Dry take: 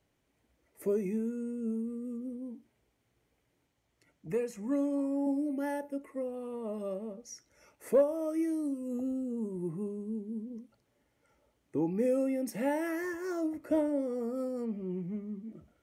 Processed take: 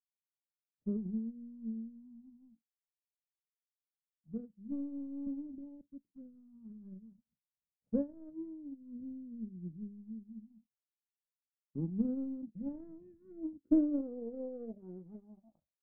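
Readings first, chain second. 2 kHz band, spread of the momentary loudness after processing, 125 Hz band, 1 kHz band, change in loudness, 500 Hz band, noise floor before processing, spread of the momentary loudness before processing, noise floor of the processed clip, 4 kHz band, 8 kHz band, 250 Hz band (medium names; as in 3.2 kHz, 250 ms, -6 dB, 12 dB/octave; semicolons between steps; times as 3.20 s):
under -30 dB, 19 LU, -3.0 dB, under -20 dB, -5.5 dB, -14.5 dB, -77 dBFS, 13 LU, under -85 dBFS, no reading, under -25 dB, -4.5 dB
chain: power-law waveshaper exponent 2; touch-sensitive phaser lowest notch 340 Hz, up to 4.8 kHz, full sweep at -37 dBFS; low-pass sweep 200 Hz -> 630 Hz, 13.14–14.85 s; trim +4 dB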